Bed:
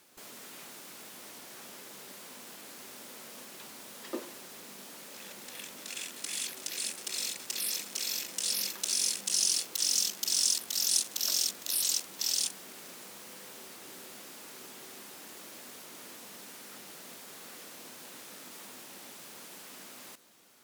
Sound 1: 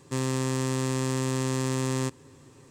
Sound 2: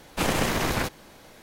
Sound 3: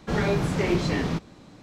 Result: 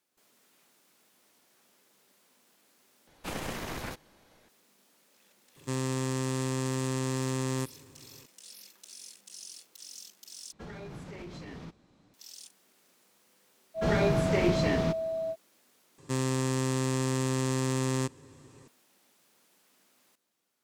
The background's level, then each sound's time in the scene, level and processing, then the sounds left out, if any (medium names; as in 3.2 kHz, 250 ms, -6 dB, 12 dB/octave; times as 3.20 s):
bed -18.5 dB
3.07 s: replace with 2 -12 dB
5.56 s: add 1 -3.5 dB
10.52 s: replace with 3 -15 dB + peak limiter -20.5 dBFS
13.74 s: add 3 -2.5 dB, fades 0.05 s + whistle 650 Hz -27 dBFS
15.98 s: replace with 1 -1.5 dB